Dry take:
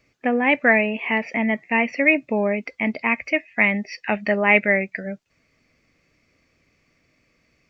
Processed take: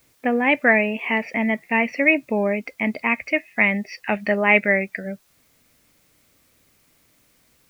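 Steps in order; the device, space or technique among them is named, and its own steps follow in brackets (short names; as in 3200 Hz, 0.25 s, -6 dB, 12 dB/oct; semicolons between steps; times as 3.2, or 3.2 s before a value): plain cassette with noise reduction switched in (mismatched tape noise reduction decoder only; wow and flutter 15 cents; white noise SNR 39 dB)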